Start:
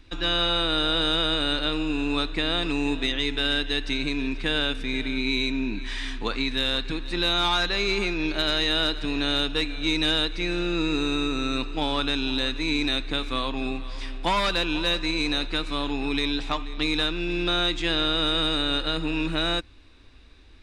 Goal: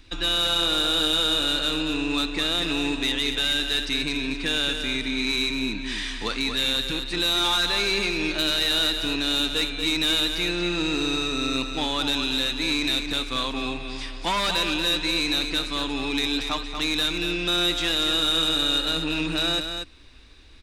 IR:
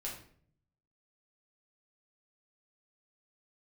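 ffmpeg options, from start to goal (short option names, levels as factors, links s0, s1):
-af "highshelf=f=2800:g=7.5,asoftclip=type=tanh:threshold=0.141,aecho=1:1:234:0.447"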